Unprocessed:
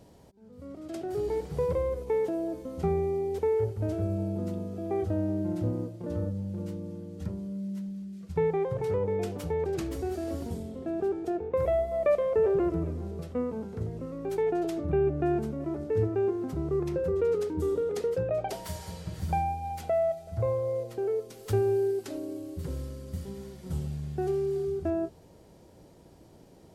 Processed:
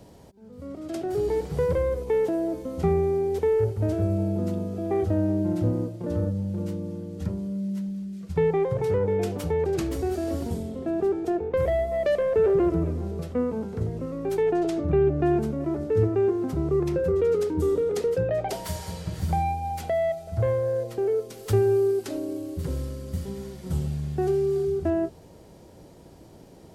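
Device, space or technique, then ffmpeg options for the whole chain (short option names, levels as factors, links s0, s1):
one-band saturation: -filter_complex "[0:a]asettb=1/sr,asplit=3[s0][s1][s2];[s0]atrim=end=14.524[s3];[s1]atrim=start=14.52:end=15.23,asetpts=PTS-STARTPTS,afade=t=in:d=0.004:c=qsin,afade=t=out:st=0.706:d=0.004:c=qsin,lowpass=9400[s4];[s2]atrim=start=15.226[s5];[s3][s4]acrossfade=d=0.004:c1=hsin:c2=qsin[s6];[s6][s5]acrossfade=d=0.004:c1=qsin:c2=hsin,acrossover=split=420|3300[s7][s8][s9];[s8]asoftclip=type=tanh:threshold=0.0355[s10];[s7][s10][s9]amix=inputs=3:normalize=0,volume=1.88"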